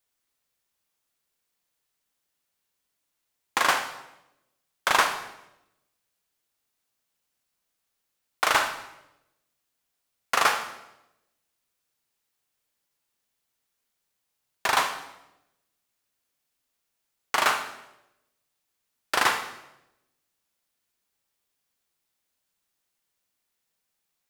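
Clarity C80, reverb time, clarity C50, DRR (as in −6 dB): 11.0 dB, 0.90 s, 8.5 dB, 6.0 dB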